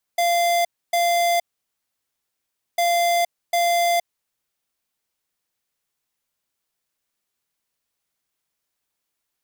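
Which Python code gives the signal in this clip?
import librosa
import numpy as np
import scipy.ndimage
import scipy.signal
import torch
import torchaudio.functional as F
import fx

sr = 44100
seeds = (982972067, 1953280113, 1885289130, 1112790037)

y = fx.beep_pattern(sr, wave='square', hz=691.0, on_s=0.47, off_s=0.28, beeps=2, pause_s=1.38, groups=2, level_db=-19.0)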